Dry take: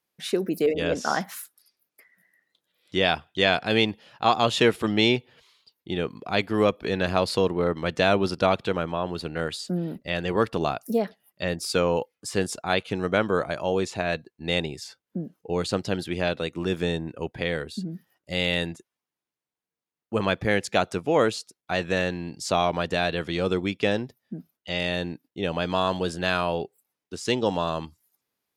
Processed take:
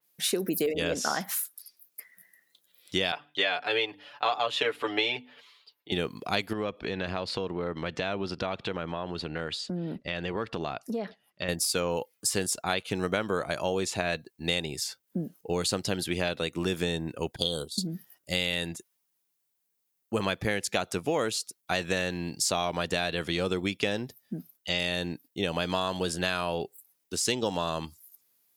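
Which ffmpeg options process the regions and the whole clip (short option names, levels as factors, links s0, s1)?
-filter_complex "[0:a]asettb=1/sr,asplit=3[s0][s1][s2];[s0]atrim=end=3.124[s3];[s1]atrim=start=3.12:end=5.92,asetpts=PTS-STARTPTS,afade=t=in:d=0.004:c=qsin,afade=t=out:st=2.796:d=0.004:c=qsin,acrossover=split=370 3700:gain=0.141 1 0.112[s4][s5][s6];[s4][s5][s6]amix=inputs=3:normalize=0,bandreject=f=50:t=h:w=6,bandreject=f=100:t=h:w=6,bandreject=f=150:t=h:w=6,bandreject=f=200:t=h:w=6,bandreject=f=250:t=h:w=6,bandreject=f=300:t=h:w=6,aecho=1:1:6.9:0.87,atrim=end_sample=123480[s7];[s2]atrim=start=5.916[s8];[s3][s7]acrossfade=d=0.004:c1=hsin:c2=qsin[s9];[s9][s8]acrossfade=d=0.004:c1=qsin:c2=hsin,asettb=1/sr,asplit=3[s10][s11][s12];[s10]atrim=end=6.534[s13];[s11]atrim=start=6.53:end=11.49,asetpts=PTS-STARTPTS,afade=t=in:d=0.004:c=qsin,afade=t=out:st=4.956:d=0.004:c=qsin,acompressor=threshold=0.0316:ratio=3:attack=3.2:release=140:knee=1:detection=peak,lowpass=3500[s14];[s12]atrim=start=11.486[s15];[s13][s14]acrossfade=d=0.004:c1=hsin:c2=qsin[s16];[s16][s15]acrossfade=d=0.004:c1=qsin:c2=hsin,asettb=1/sr,asplit=3[s17][s18][s19];[s17]atrim=end=17.364[s20];[s18]atrim=start=17.36:end=17.87,asetpts=PTS-STARTPTS,afade=t=in:d=0.004:c=qsin,afade=t=out:st=0.506:d=0.004:c=qsin,agate=range=0.0224:threshold=0.0251:ratio=3:release=100:detection=peak,asuperstop=centerf=2100:order=8:qfactor=1.1,highshelf=f=2300:t=q:w=1.5:g=8.5[s21];[s19]atrim=start=17.866[s22];[s20][s21]acrossfade=d=0.004:c1=hsin:c2=qsin[s23];[s23][s22]acrossfade=d=0.004:c1=qsin:c2=hsin,aemphasis=mode=production:type=75kf,acompressor=threshold=0.0631:ratio=6,adynamicequalizer=threshold=0.00891:dfrequency=3900:dqfactor=0.7:tfrequency=3900:tqfactor=0.7:attack=5:release=100:ratio=0.375:range=2:mode=cutabove:tftype=highshelf"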